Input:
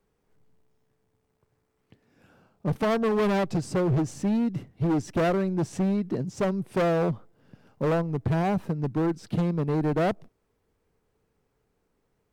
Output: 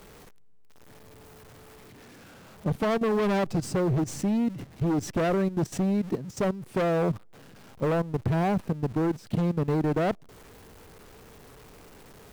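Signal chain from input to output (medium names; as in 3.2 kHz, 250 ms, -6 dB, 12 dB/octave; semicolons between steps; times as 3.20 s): jump at every zero crossing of -39 dBFS; level held to a coarse grid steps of 13 dB; trim +2 dB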